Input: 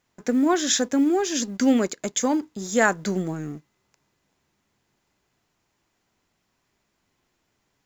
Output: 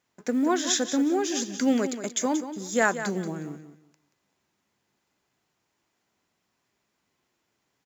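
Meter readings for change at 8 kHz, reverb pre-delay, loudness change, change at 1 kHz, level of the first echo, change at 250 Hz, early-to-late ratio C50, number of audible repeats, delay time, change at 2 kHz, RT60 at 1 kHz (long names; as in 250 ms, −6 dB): can't be measured, no reverb audible, −3.5 dB, −3.0 dB, −11.0 dB, −3.5 dB, no reverb audible, 2, 181 ms, −2.5 dB, no reverb audible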